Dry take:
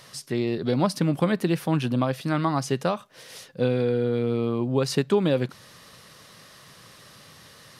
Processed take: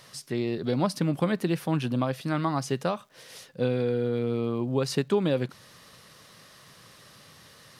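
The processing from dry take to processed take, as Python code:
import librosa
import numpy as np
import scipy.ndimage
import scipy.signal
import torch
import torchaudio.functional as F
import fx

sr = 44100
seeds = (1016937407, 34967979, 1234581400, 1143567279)

y = fx.dmg_crackle(x, sr, seeds[0], per_s=280.0, level_db=-53.0)
y = y * 10.0 ** (-3.0 / 20.0)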